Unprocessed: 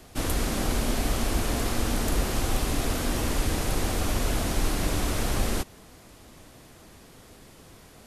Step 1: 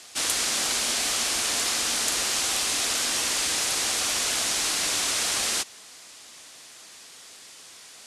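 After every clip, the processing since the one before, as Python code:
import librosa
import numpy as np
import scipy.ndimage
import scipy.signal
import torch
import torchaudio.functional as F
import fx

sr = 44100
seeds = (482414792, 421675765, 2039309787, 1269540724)

y = fx.weighting(x, sr, curve='ITU-R 468')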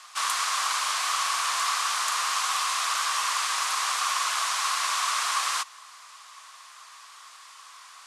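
y = fx.highpass_res(x, sr, hz=1100.0, q=7.3)
y = fx.high_shelf(y, sr, hz=6300.0, db=-5.0)
y = y * librosa.db_to_amplitude(-2.5)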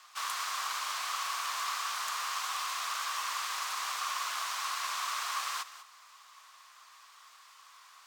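y = x + 10.0 ** (-14.5 / 20.0) * np.pad(x, (int(196 * sr / 1000.0), 0))[:len(x)]
y = np.interp(np.arange(len(y)), np.arange(len(y))[::2], y[::2])
y = y * librosa.db_to_amplitude(-8.0)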